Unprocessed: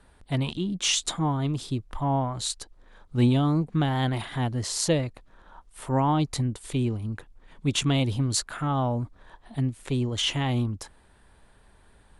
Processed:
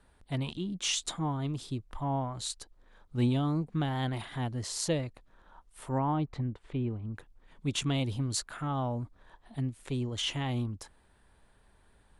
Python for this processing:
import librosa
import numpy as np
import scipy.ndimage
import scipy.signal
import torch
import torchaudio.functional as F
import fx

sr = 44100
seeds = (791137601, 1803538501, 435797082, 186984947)

y = fx.lowpass(x, sr, hz=2100.0, slope=12, at=(5.98, 7.14))
y = y * librosa.db_to_amplitude(-6.5)